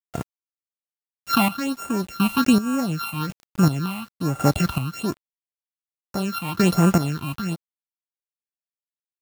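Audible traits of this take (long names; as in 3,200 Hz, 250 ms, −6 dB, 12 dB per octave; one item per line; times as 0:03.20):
a buzz of ramps at a fixed pitch in blocks of 32 samples
phaser sweep stages 6, 1.2 Hz, lowest notch 420–4,400 Hz
a quantiser's noise floor 8 bits, dither none
chopped level 0.91 Hz, depth 65%, duty 35%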